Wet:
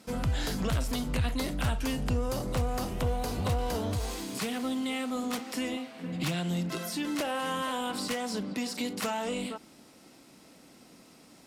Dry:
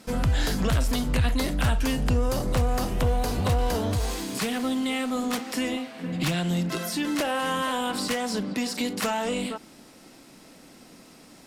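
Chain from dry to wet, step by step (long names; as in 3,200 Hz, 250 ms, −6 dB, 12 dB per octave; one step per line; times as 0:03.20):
high-pass filter 46 Hz
parametric band 1,700 Hz −3 dB 0.2 octaves
level −5 dB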